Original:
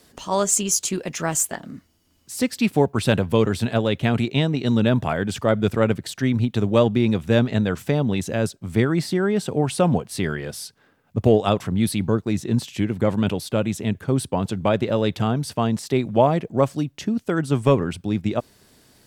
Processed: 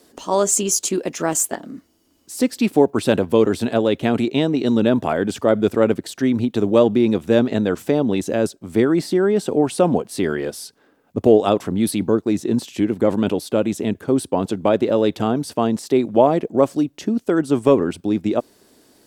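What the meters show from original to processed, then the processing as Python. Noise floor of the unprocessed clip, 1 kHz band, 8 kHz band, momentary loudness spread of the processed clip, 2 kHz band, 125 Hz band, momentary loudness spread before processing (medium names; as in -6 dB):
-61 dBFS, +2.0 dB, +1.5 dB, 7 LU, -1.0 dB, -5.5 dB, 7 LU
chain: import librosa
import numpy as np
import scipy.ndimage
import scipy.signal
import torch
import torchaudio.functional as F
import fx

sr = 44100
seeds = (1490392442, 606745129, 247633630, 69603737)

p1 = fx.curve_eq(x, sr, hz=(140.0, 300.0, 2100.0, 7300.0), db=(0, 14, 5, 8))
p2 = fx.level_steps(p1, sr, step_db=21)
p3 = p1 + (p2 * librosa.db_to_amplitude(-2.0))
y = p3 * librosa.db_to_amplitude(-8.5)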